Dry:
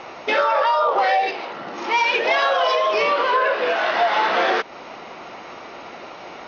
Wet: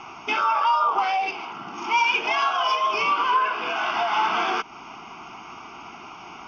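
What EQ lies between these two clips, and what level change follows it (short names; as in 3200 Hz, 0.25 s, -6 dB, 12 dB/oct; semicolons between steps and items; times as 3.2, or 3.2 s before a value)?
fixed phaser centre 2700 Hz, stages 8; 0.0 dB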